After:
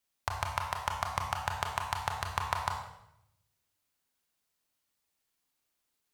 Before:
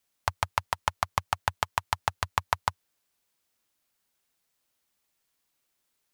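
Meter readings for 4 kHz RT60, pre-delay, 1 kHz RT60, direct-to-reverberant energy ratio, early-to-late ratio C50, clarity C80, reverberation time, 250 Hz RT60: 0.70 s, 24 ms, 0.75 s, 2.5 dB, 5.0 dB, 7.5 dB, 0.80 s, 1.1 s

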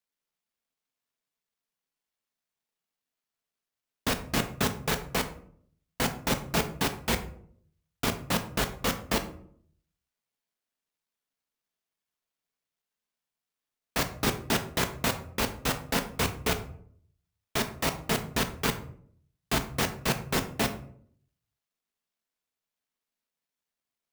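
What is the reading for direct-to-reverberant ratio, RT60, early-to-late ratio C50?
6.5 dB, 0.60 s, 12.0 dB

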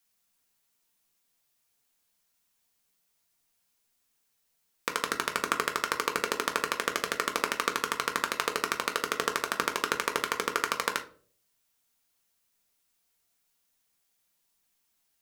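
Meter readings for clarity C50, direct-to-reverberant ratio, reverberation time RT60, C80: 13.5 dB, 4.0 dB, 0.50 s, 19.5 dB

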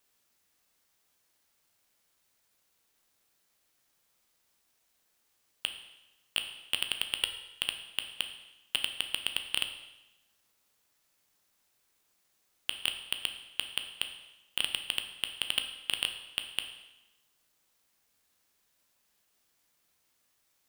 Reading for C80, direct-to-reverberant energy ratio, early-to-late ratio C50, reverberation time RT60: 10.5 dB, 5.5 dB, 8.5 dB, 0.95 s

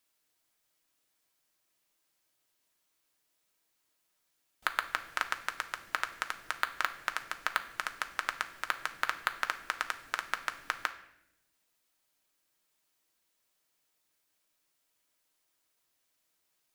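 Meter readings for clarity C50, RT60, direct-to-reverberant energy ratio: 13.0 dB, 0.80 s, 6.0 dB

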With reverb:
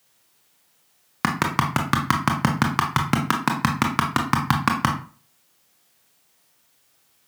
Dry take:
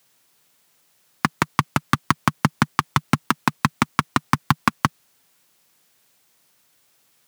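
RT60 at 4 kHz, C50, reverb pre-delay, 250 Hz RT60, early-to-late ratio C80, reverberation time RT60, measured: 0.30 s, 8.0 dB, 20 ms, 0.40 s, 13.0 dB, 0.40 s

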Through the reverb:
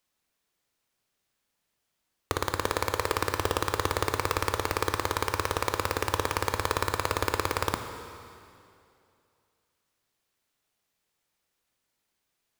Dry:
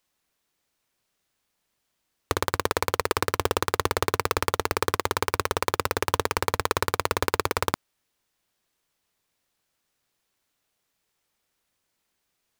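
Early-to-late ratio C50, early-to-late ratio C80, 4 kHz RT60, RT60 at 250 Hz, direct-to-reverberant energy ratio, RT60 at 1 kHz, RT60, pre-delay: 7.5 dB, 8.5 dB, 2.3 s, 2.6 s, 6.5 dB, 2.5 s, 2.6 s, 8 ms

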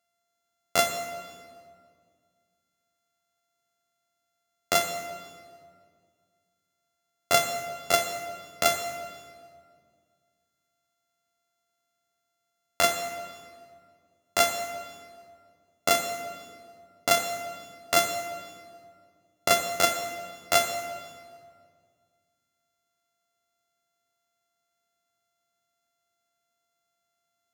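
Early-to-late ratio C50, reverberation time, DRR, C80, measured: 7.0 dB, 2.0 s, 6.0 dB, 8.5 dB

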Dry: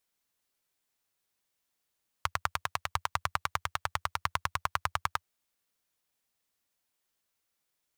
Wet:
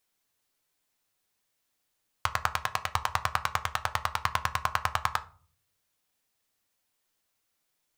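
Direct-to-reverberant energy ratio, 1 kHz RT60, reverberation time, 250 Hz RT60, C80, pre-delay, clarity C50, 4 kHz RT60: 8.5 dB, 0.40 s, 0.45 s, 0.65 s, 23.5 dB, 4 ms, 18.0 dB, 0.25 s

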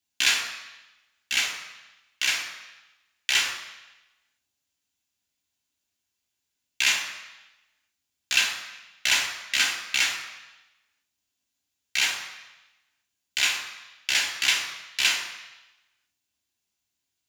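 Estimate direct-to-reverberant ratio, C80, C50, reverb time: 0.5 dB, 9.0 dB, 7.0 dB, 1.0 s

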